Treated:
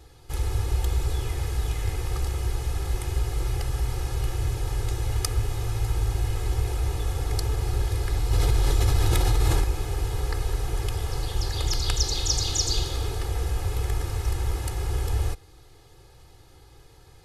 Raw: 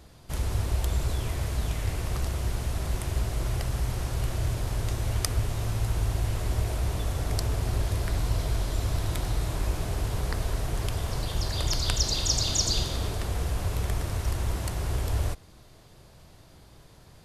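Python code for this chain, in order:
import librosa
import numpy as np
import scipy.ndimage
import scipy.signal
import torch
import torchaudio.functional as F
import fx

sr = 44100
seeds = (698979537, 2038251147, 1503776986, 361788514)

y = x + 0.98 * np.pad(x, (int(2.4 * sr / 1000.0), 0))[:len(x)]
y = fx.env_flatten(y, sr, amount_pct=100, at=(8.31, 9.64))
y = F.gain(torch.from_numpy(y), -2.5).numpy()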